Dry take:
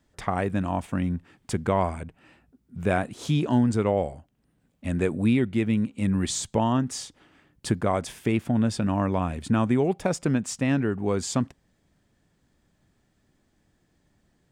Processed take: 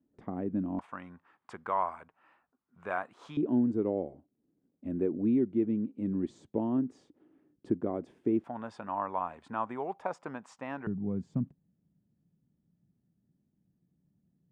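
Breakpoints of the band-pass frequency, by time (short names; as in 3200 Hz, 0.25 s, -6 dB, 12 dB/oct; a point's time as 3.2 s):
band-pass, Q 2.5
270 Hz
from 0.79 s 1100 Hz
from 3.37 s 320 Hz
from 8.44 s 960 Hz
from 10.87 s 170 Hz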